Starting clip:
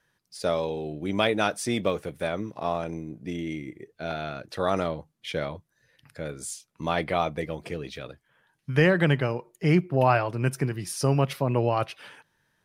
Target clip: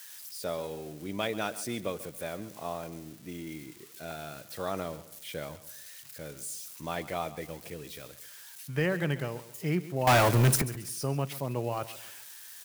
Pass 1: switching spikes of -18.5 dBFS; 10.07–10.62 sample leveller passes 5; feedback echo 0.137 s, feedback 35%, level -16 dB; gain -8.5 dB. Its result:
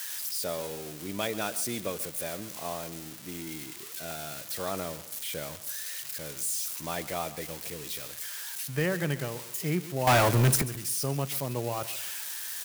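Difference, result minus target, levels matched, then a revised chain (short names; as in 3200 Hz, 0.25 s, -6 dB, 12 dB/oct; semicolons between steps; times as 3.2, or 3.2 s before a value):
switching spikes: distortion +10 dB
switching spikes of -29 dBFS; 10.07–10.62 sample leveller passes 5; feedback echo 0.137 s, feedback 35%, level -16 dB; gain -8.5 dB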